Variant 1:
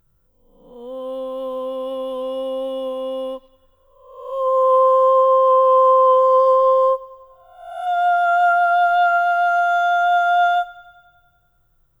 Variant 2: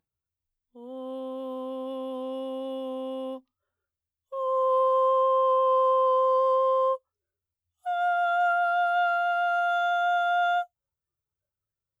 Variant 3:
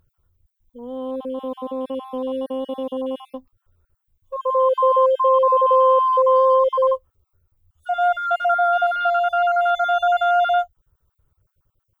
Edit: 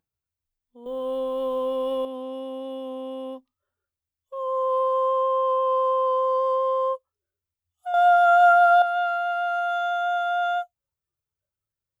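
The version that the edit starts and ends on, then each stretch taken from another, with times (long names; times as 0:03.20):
2
0:00.86–0:02.05: punch in from 1
0:07.94–0:08.82: punch in from 1
not used: 3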